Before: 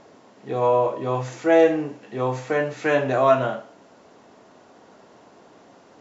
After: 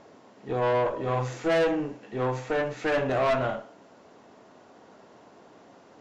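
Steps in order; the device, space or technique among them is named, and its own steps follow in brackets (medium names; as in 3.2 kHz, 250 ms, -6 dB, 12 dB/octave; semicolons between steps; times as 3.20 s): 0.95–1.64 s: doubling 41 ms -5 dB; tube preamp driven hard (valve stage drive 20 dB, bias 0.5; treble shelf 5.3 kHz -4 dB)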